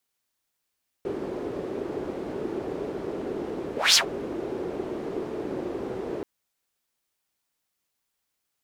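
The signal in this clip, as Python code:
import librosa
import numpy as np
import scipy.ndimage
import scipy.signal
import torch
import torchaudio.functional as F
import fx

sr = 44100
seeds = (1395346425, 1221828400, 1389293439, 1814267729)

y = fx.whoosh(sr, seeds[0], length_s=5.18, peak_s=2.9, rise_s=0.2, fall_s=0.11, ends_hz=380.0, peak_hz=5400.0, q=3.2, swell_db=15.5)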